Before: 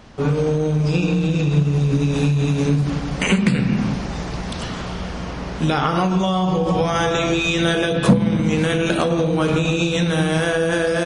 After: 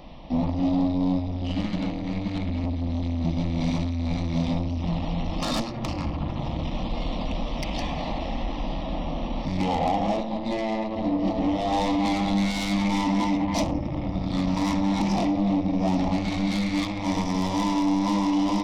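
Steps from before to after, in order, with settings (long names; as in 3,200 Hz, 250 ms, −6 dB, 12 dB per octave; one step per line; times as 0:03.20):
change of speed 0.593×
soft clipping −22.5 dBFS, distortion −8 dB
phaser with its sweep stopped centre 410 Hz, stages 6
level +5 dB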